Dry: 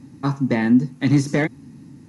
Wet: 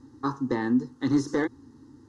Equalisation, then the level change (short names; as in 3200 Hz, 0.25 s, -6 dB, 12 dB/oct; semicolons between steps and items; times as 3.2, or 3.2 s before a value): air absorption 85 m; bell 190 Hz -5 dB 1.4 oct; fixed phaser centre 640 Hz, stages 6; 0.0 dB